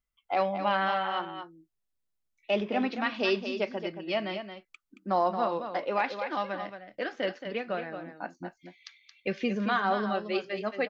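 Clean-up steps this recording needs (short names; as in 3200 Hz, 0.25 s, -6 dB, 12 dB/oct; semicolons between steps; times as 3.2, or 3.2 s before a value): inverse comb 0.224 s -8.5 dB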